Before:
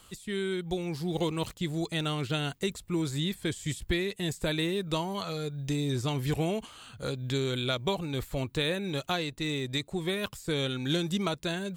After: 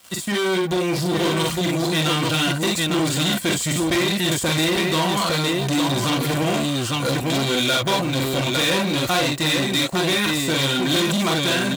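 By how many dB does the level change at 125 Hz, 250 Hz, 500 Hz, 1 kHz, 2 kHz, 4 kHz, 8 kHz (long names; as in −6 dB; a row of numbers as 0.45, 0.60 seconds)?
+8.0, +10.5, +9.5, +14.0, +13.5, +13.5, +17.0 decibels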